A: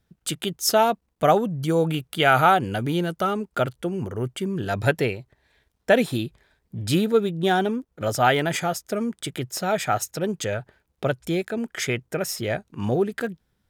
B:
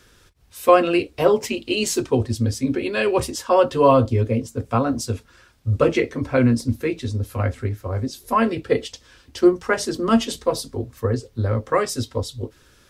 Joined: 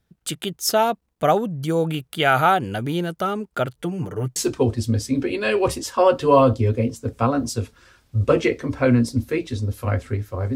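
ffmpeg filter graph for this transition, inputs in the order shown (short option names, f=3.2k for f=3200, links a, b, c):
-filter_complex "[0:a]asettb=1/sr,asplit=3[a][b][c];[a]atrim=end=3.774[d];[b]atrim=start=3.77:end=4.36,asetpts=PTS-STARTPTS,afade=t=in:d=0.004:c=qsin,afade=t=out:st=0.586:d=0.004:c=qsin,aecho=1:1:6.7:0.82,atrim=end_sample=26019[e];[c]atrim=start=4.356[f];[d][e]acrossfade=d=0.004:c1=hsin:c2=qsin[g];[g][f]acrossfade=d=0.004:c1=qsin:c2=hsin,apad=whole_dur=10.55,atrim=end=10.55,atrim=end=4.362[h];[1:a]atrim=start=1.878:end=8.07[i];[h][i]acrossfade=d=0.004:c1=hsin:c2=hsin"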